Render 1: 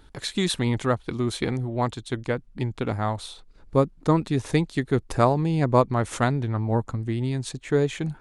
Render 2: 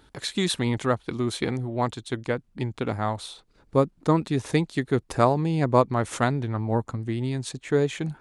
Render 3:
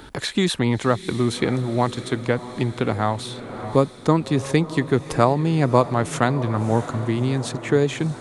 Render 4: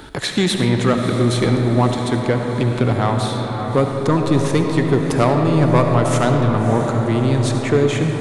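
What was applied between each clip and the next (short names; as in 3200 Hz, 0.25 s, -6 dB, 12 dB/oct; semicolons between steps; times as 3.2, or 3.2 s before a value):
HPF 100 Hz 6 dB/oct
diffused feedback echo 0.62 s, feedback 57%, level -15.5 dB; three-band squash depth 40%; gain +4 dB
soft clip -11.5 dBFS, distortion -13 dB; reverb RT60 4.1 s, pre-delay 30 ms, DRR 3 dB; gain +4 dB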